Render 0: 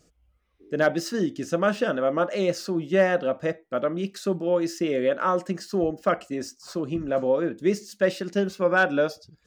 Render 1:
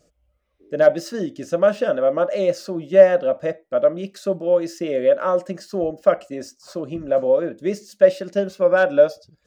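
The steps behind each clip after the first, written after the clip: peaking EQ 580 Hz +13 dB 0.33 oct; trim -1.5 dB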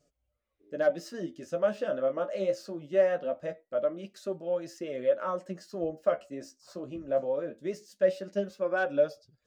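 flange 0.22 Hz, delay 6.9 ms, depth 9.2 ms, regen +32%; trim -7 dB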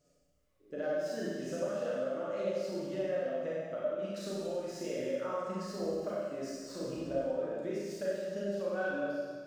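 compression, threshold -37 dBFS, peak gain reduction 17.5 dB; Schroeder reverb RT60 1.6 s, combs from 31 ms, DRR -7 dB; trim -2 dB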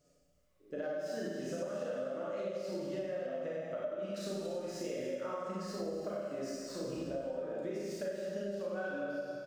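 compression, threshold -36 dBFS, peak gain reduction 8 dB; delay 275 ms -13.5 dB; trim +1 dB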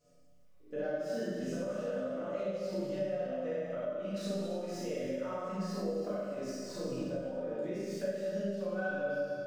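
simulated room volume 160 m³, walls furnished, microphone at 1.9 m; trim -3 dB

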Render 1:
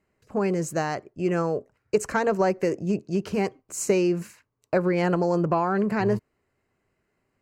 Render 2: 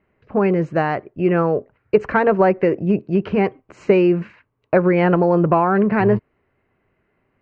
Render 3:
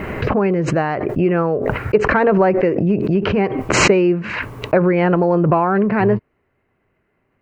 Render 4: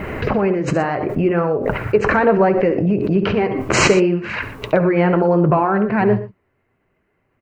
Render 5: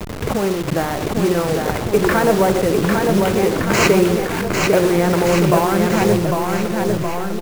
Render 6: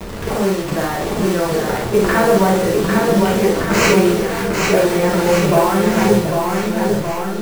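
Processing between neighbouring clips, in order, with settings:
low-pass 2.9 kHz 24 dB/octave; trim +7.5 dB
swell ahead of each attack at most 33 dB/s
on a send: multi-tap echo 69/119 ms -13/-15 dB; on the sum: flange 0.69 Hz, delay 1.2 ms, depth 9.2 ms, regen -57%; trim +3.5 dB
send-on-delta sampling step -20 dBFS; on a send: bouncing-ball echo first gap 800 ms, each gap 0.9×, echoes 5; on the sum: trim -1 dB
reverberation, pre-delay 3 ms, DRR -3 dB; trim -3.5 dB

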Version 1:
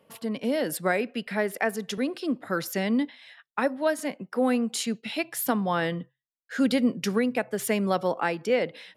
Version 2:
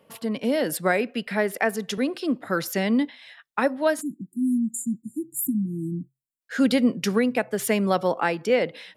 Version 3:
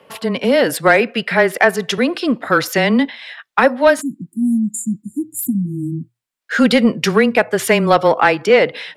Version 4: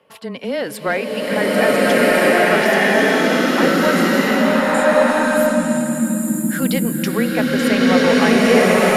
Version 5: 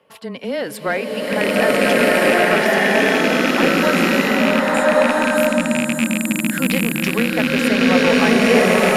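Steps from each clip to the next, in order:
spectral selection erased 4.01–6.41 s, 350–6900 Hz; trim +3 dB
frequency shift -15 Hz; overdrive pedal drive 10 dB, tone 6 kHz, clips at -9 dBFS; treble shelf 4.5 kHz -5.5 dB; trim +9 dB
swelling reverb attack 1480 ms, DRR -10 dB; trim -9 dB
rattle on loud lows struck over -21 dBFS, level -7 dBFS; trim -1 dB

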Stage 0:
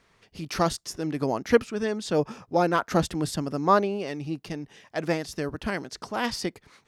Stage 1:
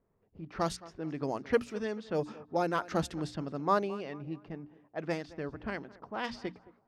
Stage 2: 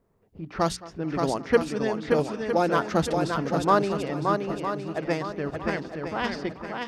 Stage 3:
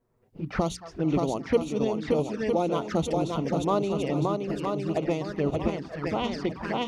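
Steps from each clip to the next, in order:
hum notches 60/120/180/240/300 Hz; thinning echo 218 ms, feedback 40%, high-pass 180 Hz, level -18.5 dB; level-controlled noise filter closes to 580 Hz, open at -20 dBFS; trim -7.5 dB
shuffle delay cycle 959 ms, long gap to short 1.5:1, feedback 31%, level -4.5 dB; trim +7 dB
recorder AGC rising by 19 dB/s; touch-sensitive flanger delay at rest 8.4 ms, full sweep at -20.5 dBFS; trim -2 dB

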